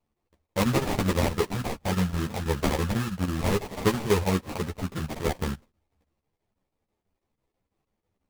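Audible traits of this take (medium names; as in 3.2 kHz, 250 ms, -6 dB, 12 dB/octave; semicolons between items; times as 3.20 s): phasing stages 2, 3.7 Hz, lowest notch 340–1000 Hz; aliases and images of a low sample rate 1.5 kHz, jitter 20%; chopped level 6.1 Hz, depth 65%, duty 80%; a shimmering, thickened sound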